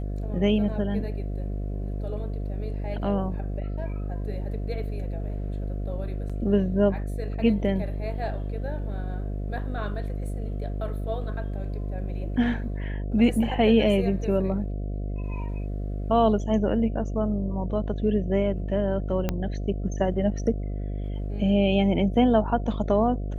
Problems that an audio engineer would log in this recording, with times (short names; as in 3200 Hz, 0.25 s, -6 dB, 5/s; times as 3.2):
buzz 50 Hz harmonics 14 -30 dBFS
6.29–6.3 gap 6.3 ms
19.29 pop -12 dBFS